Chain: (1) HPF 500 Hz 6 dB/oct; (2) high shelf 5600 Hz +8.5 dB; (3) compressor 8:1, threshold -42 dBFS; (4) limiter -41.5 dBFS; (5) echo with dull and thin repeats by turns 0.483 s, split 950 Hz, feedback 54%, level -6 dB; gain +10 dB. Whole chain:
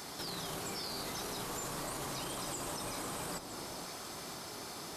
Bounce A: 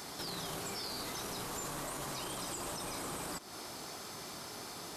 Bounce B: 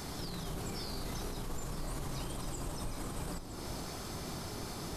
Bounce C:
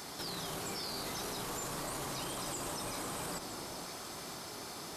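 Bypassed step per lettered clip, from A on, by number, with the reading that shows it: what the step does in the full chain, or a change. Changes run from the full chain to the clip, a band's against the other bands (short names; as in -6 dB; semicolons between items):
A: 5, echo-to-direct -9.0 dB to none; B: 1, 125 Hz band +10.5 dB; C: 3, mean gain reduction 6.5 dB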